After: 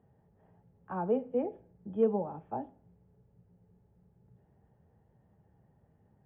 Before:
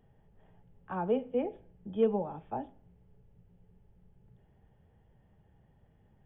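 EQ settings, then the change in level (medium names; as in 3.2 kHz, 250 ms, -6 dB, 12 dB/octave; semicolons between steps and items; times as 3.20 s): high-pass 78 Hz 12 dB/octave; low-pass 1.5 kHz 12 dB/octave; 0.0 dB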